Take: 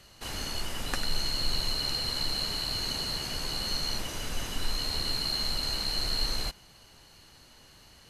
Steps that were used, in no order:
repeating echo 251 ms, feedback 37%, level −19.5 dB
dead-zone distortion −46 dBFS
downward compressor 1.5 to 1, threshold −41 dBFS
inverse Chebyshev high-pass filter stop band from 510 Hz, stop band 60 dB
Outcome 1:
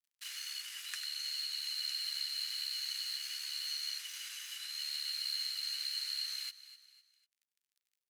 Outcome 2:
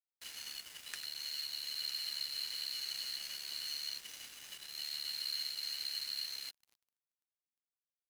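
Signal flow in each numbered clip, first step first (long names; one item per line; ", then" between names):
dead-zone distortion, then repeating echo, then downward compressor, then inverse Chebyshev high-pass filter
repeating echo, then downward compressor, then inverse Chebyshev high-pass filter, then dead-zone distortion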